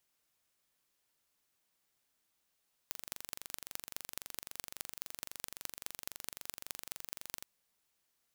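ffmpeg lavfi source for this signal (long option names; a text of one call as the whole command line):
ffmpeg -f lavfi -i "aevalsrc='0.299*eq(mod(n,1861),0)*(0.5+0.5*eq(mod(n,9305),0))':duration=4.55:sample_rate=44100" out.wav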